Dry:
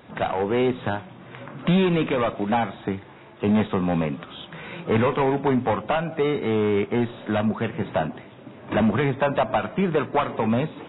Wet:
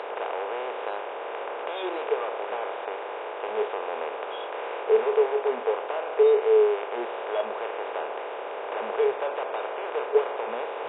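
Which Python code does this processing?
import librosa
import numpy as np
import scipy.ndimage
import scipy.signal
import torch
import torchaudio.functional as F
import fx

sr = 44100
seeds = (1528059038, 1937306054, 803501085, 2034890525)

y = fx.bin_compress(x, sr, power=0.2)
y = scipy.signal.sosfilt(scipy.signal.ellip(3, 1.0, 40, [440.0, 3100.0], 'bandpass', fs=sr, output='sos'), y)
y = fx.noise_reduce_blind(y, sr, reduce_db=21)
y = y * librosa.db_to_amplitude(5.5)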